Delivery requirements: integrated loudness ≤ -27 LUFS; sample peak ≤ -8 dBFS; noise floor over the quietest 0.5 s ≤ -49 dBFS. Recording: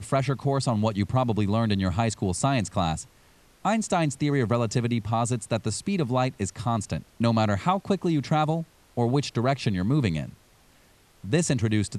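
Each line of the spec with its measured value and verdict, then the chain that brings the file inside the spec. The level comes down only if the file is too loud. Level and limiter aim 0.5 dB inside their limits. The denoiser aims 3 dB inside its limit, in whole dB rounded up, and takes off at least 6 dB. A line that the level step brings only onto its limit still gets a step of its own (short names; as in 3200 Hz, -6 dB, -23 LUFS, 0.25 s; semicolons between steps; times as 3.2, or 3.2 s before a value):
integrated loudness -26.0 LUFS: fail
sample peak -10.0 dBFS: OK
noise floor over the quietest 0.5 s -58 dBFS: OK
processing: gain -1.5 dB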